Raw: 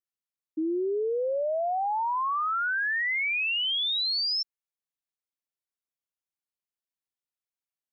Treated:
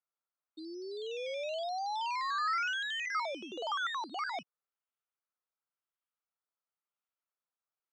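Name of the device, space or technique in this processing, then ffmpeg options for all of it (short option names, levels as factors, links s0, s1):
circuit-bent sampling toy: -filter_complex "[0:a]asettb=1/sr,asplit=3[s0][s1][s2];[s0]atrim=end=3.124[s3];[s1]atrim=start=3.12:end=4.34,asetpts=PTS-STARTPTS,afade=t=in:d=0.004:c=qsin,afade=t=out:st=1.216:d=0.004:c=qsin,lowpass=5000[s4];[s2]atrim=start=4.336[s5];[s3][s4]acrossfade=d=0.004:c1=hsin:c2=qsin[s6];[s6][s5]acrossfade=d=0.004:c1=qsin:c2=hsin,acrusher=samples=12:mix=1:aa=0.000001:lfo=1:lforange=7.2:lforate=0.96,highpass=530,equalizer=f=1300:t=q:w=4:g=7,equalizer=f=1800:t=q:w=4:g=-4,equalizer=f=3100:t=q:w=4:g=3,lowpass=f=5000:w=0.5412,lowpass=f=5000:w=1.3066,volume=0.422"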